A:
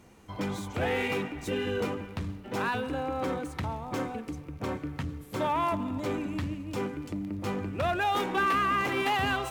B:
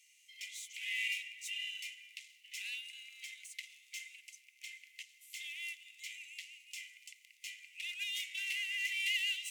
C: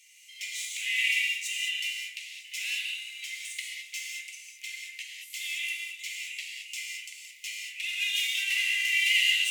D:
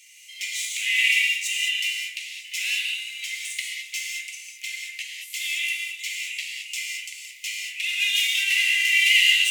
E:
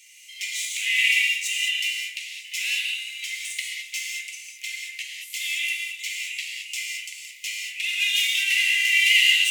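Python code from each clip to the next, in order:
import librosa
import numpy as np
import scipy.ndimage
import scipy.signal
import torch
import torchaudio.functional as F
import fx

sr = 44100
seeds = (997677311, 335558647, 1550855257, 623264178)

y1 = scipy.signal.sosfilt(scipy.signal.cheby1(6, 6, 2000.0, 'highpass', fs=sr, output='sos'), x)
y1 = y1 * librosa.db_to_amplitude(2.5)
y2 = fx.rev_gated(y1, sr, seeds[0], gate_ms=240, shape='flat', drr_db=-2.0)
y2 = y2 * librosa.db_to_amplitude(7.5)
y3 = scipy.signal.sosfilt(scipy.signal.butter(8, 1200.0, 'highpass', fs=sr, output='sos'), y2)
y3 = y3 * librosa.db_to_amplitude(6.5)
y4 = scipy.signal.sosfilt(scipy.signal.butter(4, 1200.0, 'highpass', fs=sr, output='sos'), y3)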